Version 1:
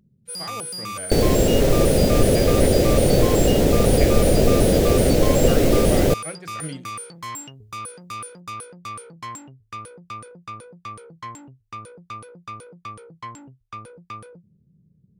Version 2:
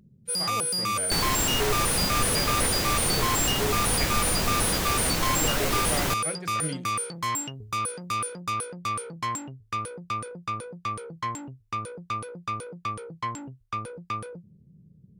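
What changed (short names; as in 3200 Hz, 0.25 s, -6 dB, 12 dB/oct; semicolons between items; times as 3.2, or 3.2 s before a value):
first sound +4.5 dB; second sound: add resonant low shelf 750 Hz -11.5 dB, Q 3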